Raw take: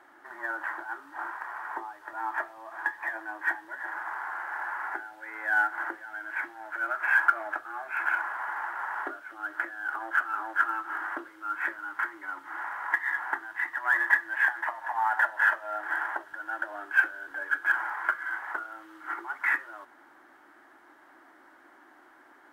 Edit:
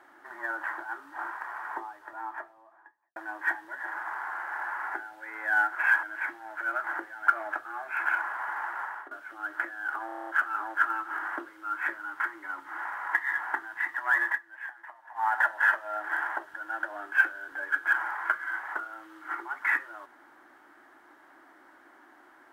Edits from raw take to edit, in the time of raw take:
1.66–3.16 s: studio fade out
5.75–6.18 s: swap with 6.99–7.27 s
8.79–9.11 s: fade out, to -19.5 dB
10.06 s: stutter 0.03 s, 8 plays
14.05–15.04 s: dip -15 dB, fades 0.12 s

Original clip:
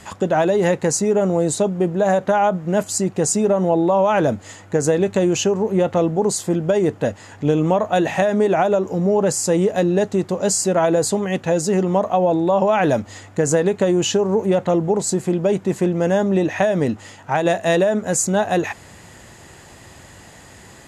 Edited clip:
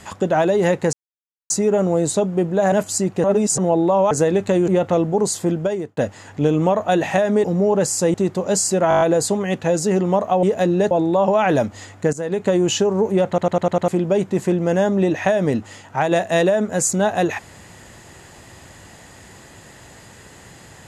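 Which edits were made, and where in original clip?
0.93 s: insert silence 0.57 s
2.15–2.72 s: delete
3.24–3.58 s: reverse
4.11–4.78 s: delete
5.35–5.72 s: delete
6.57–7.01 s: fade out
8.48–8.90 s: delete
9.60–10.08 s: move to 12.25 s
10.83 s: stutter 0.02 s, 7 plays
13.47–13.83 s: fade in, from -18.5 dB
14.62 s: stutter in place 0.10 s, 6 plays

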